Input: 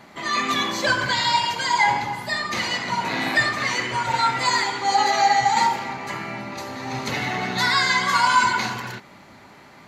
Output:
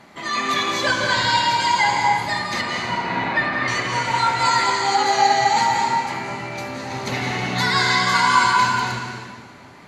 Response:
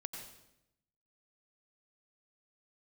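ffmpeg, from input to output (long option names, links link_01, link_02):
-filter_complex "[0:a]asettb=1/sr,asplit=3[link_01][link_02][link_03];[link_01]atrim=end=2.614[link_04];[link_02]atrim=start=2.61:end=3.68,asetpts=PTS-STARTPTS,afade=type=in:duration=0.004:curve=qsin,afade=type=out:start_time=1.066:duration=0.004:curve=qsin,lowpass=2500[link_05];[link_03]atrim=start=3.676[link_06];[link_04][link_05]acrossfade=duration=0.004:curve1=hsin:curve2=qsin[link_07];[link_07][link_06]acrossfade=duration=0.004:curve1=qsin:curve2=hsin[link_08];[1:a]atrim=start_sample=2205,asetrate=22932,aresample=44100[link_09];[link_08][link_09]afir=irnorm=-1:irlink=0"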